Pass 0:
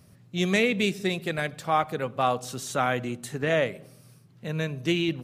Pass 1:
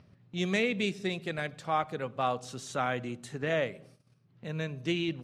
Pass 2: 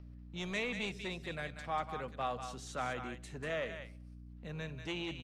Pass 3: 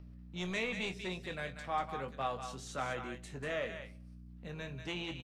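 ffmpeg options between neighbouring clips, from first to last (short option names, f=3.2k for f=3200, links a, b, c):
-filter_complex "[0:a]lowpass=7.6k,agate=range=-17dB:threshold=-50dB:ratio=16:detection=peak,acrossover=split=4600[a][b];[a]acompressor=mode=upward:threshold=-39dB:ratio=2.5[c];[c][b]amix=inputs=2:normalize=0,volume=-5.5dB"
-filter_complex "[0:a]aeval=exprs='val(0)+0.00708*(sin(2*PI*60*n/s)+sin(2*PI*2*60*n/s)/2+sin(2*PI*3*60*n/s)/3+sin(2*PI*4*60*n/s)/4+sin(2*PI*5*60*n/s)/5)':c=same,acrossover=split=630[a][b];[a]asoftclip=type=hard:threshold=-33dB[c];[b]aecho=1:1:191:0.447[d];[c][d]amix=inputs=2:normalize=0,volume=-6.5dB"
-filter_complex "[0:a]asplit=2[a][b];[b]adelay=22,volume=-8dB[c];[a][c]amix=inputs=2:normalize=0"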